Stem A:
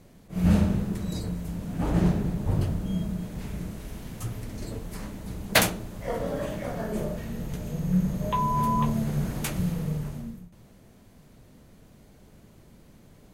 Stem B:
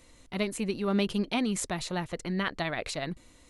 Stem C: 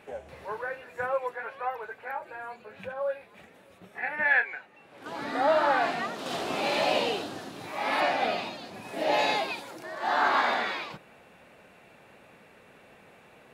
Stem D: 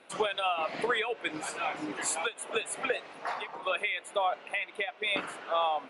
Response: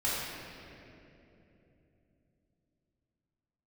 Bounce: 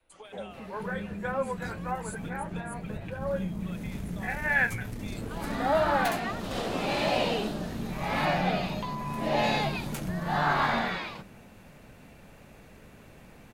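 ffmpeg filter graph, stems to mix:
-filter_complex "[0:a]acompressor=threshold=0.02:ratio=6,aeval=exprs='(tanh(28.2*val(0)+0.55)-tanh(0.55))/28.2':c=same,adelay=500,volume=1.33[s0];[1:a]lowpass=1300,alimiter=level_in=1.12:limit=0.0631:level=0:latency=1,volume=0.891,volume=0.188,asplit=2[s1][s2];[2:a]adelay=250,volume=0.794[s3];[3:a]highshelf=f=7100:g=12,volume=0.106[s4];[s2]apad=whole_len=610036[s5];[s0][s5]sidechaincompress=threshold=0.00251:ratio=8:attack=27:release=244[s6];[s6][s1][s3][s4]amix=inputs=4:normalize=0,adynamicequalizer=threshold=0.00398:dfrequency=200:dqfactor=1.2:tfrequency=200:tqfactor=1.2:attack=5:release=100:ratio=0.375:range=2.5:mode=boostabove:tftype=bell"

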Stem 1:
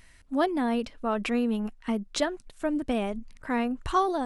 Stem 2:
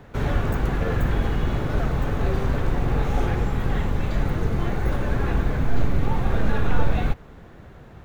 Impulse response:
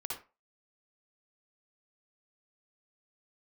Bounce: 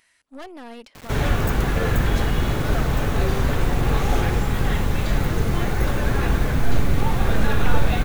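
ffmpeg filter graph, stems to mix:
-filter_complex "[0:a]highpass=f=800:p=1,aeval=exprs='(tanh(39.8*val(0)+0.8)-tanh(0.8))/39.8':c=same,alimiter=level_in=2.51:limit=0.0631:level=0:latency=1,volume=0.398,volume=1.33[s0];[1:a]highshelf=f=2400:g=8.5,acrusher=bits=6:mix=0:aa=0.000001,adelay=950,volume=1.26[s1];[s0][s1]amix=inputs=2:normalize=0"

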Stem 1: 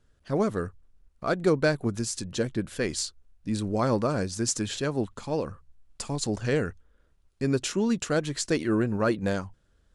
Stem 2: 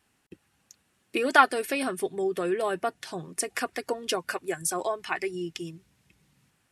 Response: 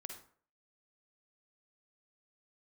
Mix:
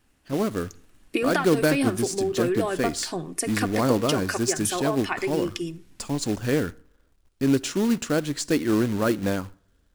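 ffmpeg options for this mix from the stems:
-filter_complex "[0:a]acrusher=bits=3:mode=log:mix=0:aa=0.000001,volume=0.596,asplit=2[s0][s1];[s1]volume=0.237[s2];[1:a]acompressor=threshold=0.0447:ratio=10,volume=0.841,asplit=2[s3][s4];[s4]volume=0.422[s5];[2:a]atrim=start_sample=2205[s6];[s2][s5]amix=inputs=2:normalize=0[s7];[s7][s6]afir=irnorm=-1:irlink=0[s8];[s0][s3][s8]amix=inputs=3:normalize=0,equalizer=f=280:w=3.5:g=7,dynaudnorm=f=290:g=3:m=1.58"

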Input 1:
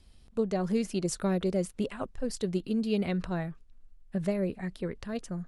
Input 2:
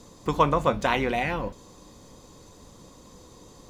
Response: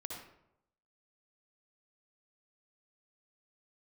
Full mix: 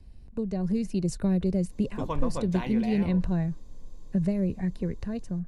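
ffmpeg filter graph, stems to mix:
-filter_complex "[0:a]highshelf=f=3500:g=-9.5,bandreject=f=3300:w=6.1,acrossover=split=160|3000[s0][s1][s2];[s1]acompressor=threshold=0.00708:ratio=2[s3];[s0][s3][s2]amix=inputs=3:normalize=0,volume=1.06[s4];[1:a]adelay=1700,volume=0.141[s5];[s4][s5]amix=inputs=2:normalize=0,lowshelf=f=330:g=9,bandreject=f=1300:w=6,dynaudnorm=f=330:g=5:m=1.41"

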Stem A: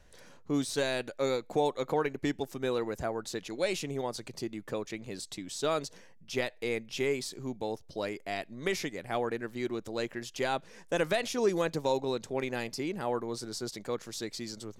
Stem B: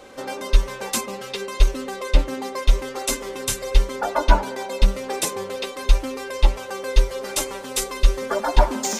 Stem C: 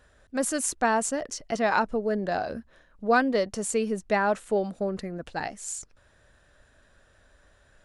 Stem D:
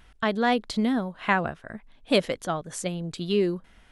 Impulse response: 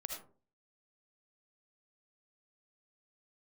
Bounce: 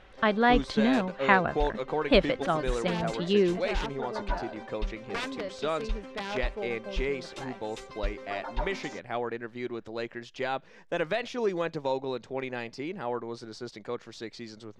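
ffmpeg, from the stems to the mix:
-filter_complex "[0:a]volume=1.12[s0];[1:a]volume=0.2[s1];[2:a]aeval=exprs='(mod(5.96*val(0)+1,2)-1)/5.96':c=same,adelay=2050,volume=0.316[s2];[3:a]volume=1.26[s3];[s0][s1][s2][s3]amix=inputs=4:normalize=0,lowpass=3400,lowshelf=f=460:g=-3.5"

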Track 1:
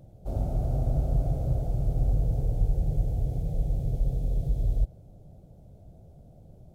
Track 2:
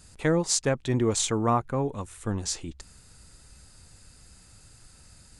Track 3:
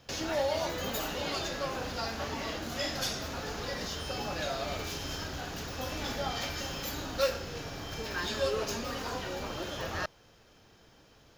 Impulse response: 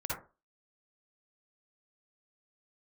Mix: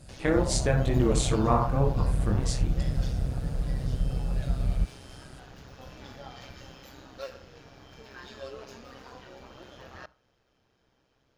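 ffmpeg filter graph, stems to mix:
-filter_complex "[0:a]volume=1.12[s0];[1:a]equalizer=f=6600:t=o:w=0.81:g=-6,flanger=delay=18.5:depth=5.1:speed=2.1,volume=1.33,asplit=2[s1][s2];[s2]volume=0.398[s3];[2:a]lowpass=f=3900:p=1,volume=0.376,asplit=2[s4][s5];[s5]volume=0.0708[s6];[3:a]atrim=start_sample=2205[s7];[s3][s6]amix=inputs=2:normalize=0[s8];[s8][s7]afir=irnorm=-1:irlink=0[s9];[s0][s1][s4][s9]amix=inputs=4:normalize=0,tremolo=f=130:d=0.571"

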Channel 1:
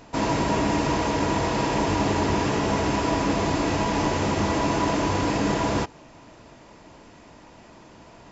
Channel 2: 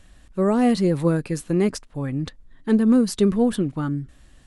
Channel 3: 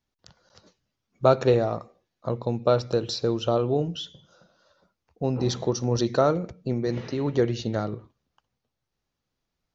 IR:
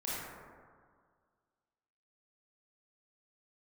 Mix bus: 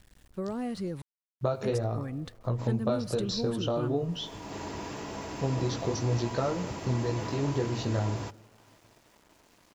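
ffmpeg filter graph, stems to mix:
-filter_complex "[0:a]bass=f=250:g=-2,treble=f=4000:g=4,acompressor=mode=upward:threshold=0.0126:ratio=2.5,adelay=2450,volume=0.188[s0];[1:a]acompressor=threshold=0.0708:ratio=4,aeval=exprs='val(0)+0.00112*(sin(2*PI*60*n/s)+sin(2*PI*2*60*n/s)/2+sin(2*PI*3*60*n/s)/3+sin(2*PI*4*60*n/s)/4+sin(2*PI*5*60*n/s)/5)':c=same,volume=0.376,asplit=3[s1][s2][s3];[s1]atrim=end=1.02,asetpts=PTS-STARTPTS,afade=t=out:st=1.016:d=0.004:c=hsin[s4];[s2]atrim=start=1.02:end=1.63,asetpts=PTS-STARTPTS,volume=0[s5];[s3]atrim=start=1.63,asetpts=PTS-STARTPTS,afade=t=in:d=0.004:c=hsin[s6];[s4][s5][s6]concat=n=3:v=0:a=1,asplit=2[s7][s8];[2:a]equalizer=f=100:t=o:w=0.66:g=10.5,flanger=delay=15.5:depth=6.6:speed=0.47,acompressor=threshold=0.0501:ratio=6,adelay=200,volume=1,asplit=2[s9][s10];[s10]volume=0.0841[s11];[s8]apad=whole_len=474572[s12];[s0][s12]sidechaincompress=threshold=0.00126:ratio=8:attack=16:release=267[s13];[3:a]atrim=start_sample=2205[s14];[s11][s14]afir=irnorm=-1:irlink=0[s15];[s13][s7][s9][s15]amix=inputs=4:normalize=0,aeval=exprs='val(0)*gte(abs(val(0)),0.0015)':c=same"

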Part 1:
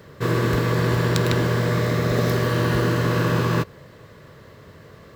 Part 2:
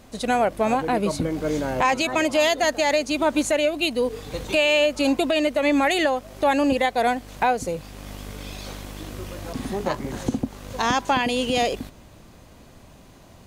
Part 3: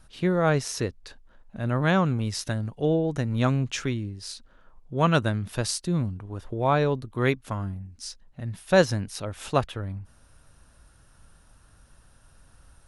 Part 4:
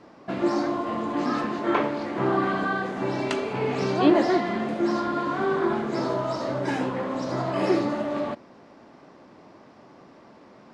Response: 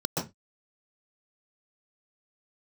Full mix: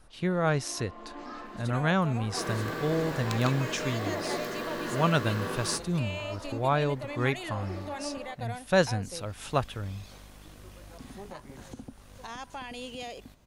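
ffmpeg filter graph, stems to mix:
-filter_complex "[0:a]highpass=f=210:w=0.5412,highpass=f=210:w=1.3066,adelay=2150,volume=0.299[s0];[1:a]alimiter=limit=0.168:level=0:latency=1:release=150,adelay=1450,volume=0.211[s1];[2:a]volume=0.75,asplit=2[s2][s3];[3:a]highpass=270,volume=0.224[s4];[s3]apad=whole_len=473446[s5];[s4][s5]sidechaincompress=threshold=0.0282:ratio=8:attack=21:release=310[s6];[s0][s1][s2][s6]amix=inputs=4:normalize=0,equalizer=f=340:w=0.88:g=-3.5"

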